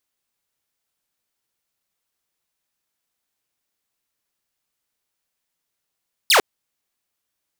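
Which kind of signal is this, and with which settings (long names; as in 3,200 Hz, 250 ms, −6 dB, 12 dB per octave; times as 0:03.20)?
single falling chirp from 5,300 Hz, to 340 Hz, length 0.10 s saw, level −8.5 dB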